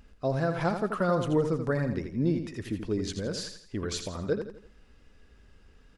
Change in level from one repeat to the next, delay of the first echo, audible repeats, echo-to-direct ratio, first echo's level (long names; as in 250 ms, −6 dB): −8.0 dB, 83 ms, 4, −7.5 dB, −8.0 dB